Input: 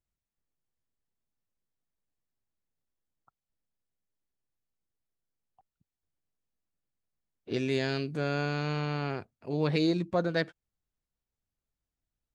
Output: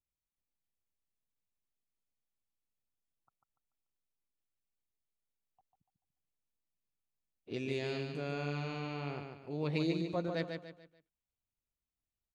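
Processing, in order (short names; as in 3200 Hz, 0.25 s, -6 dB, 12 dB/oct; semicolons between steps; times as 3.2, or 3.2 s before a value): thirty-one-band EQ 1600 Hz -7 dB, 2500 Hz +4 dB, 5000 Hz -4 dB; feedback echo 0.145 s, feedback 36%, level -5.5 dB; gain -8 dB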